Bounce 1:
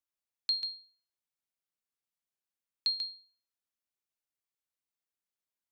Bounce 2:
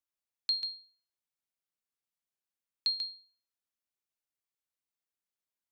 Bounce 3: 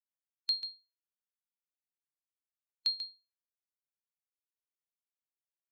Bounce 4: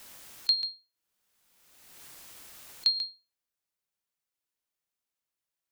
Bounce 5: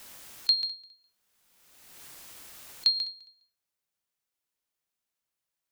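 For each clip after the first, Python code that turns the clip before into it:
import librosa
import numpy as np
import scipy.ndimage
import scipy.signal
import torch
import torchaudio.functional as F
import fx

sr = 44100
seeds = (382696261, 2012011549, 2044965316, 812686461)

y1 = x
y2 = fx.bin_expand(y1, sr, power=1.5)
y3 = fx.pre_swell(y2, sr, db_per_s=34.0)
y3 = F.gain(torch.from_numpy(y3), 6.0).numpy()
y4 = fx.echo_feedback(y3, sr, ms=205, feedback_pct=18, wet_db=-22.5)
y4 = F.gain(torch.from_numpy(y4), 1.5).numpy()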